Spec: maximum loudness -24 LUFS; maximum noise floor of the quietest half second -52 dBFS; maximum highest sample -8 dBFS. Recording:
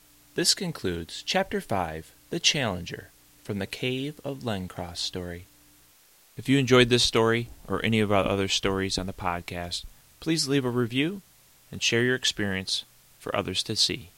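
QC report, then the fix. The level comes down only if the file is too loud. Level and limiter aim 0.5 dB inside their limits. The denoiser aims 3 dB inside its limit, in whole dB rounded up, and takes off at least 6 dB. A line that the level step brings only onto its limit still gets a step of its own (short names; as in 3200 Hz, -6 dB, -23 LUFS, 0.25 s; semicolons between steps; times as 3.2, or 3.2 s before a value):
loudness -26.5 LUFS: OK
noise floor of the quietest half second -58 dBFS: OK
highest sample -5.5 dBFS: fail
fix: limiter -8.5 dBFS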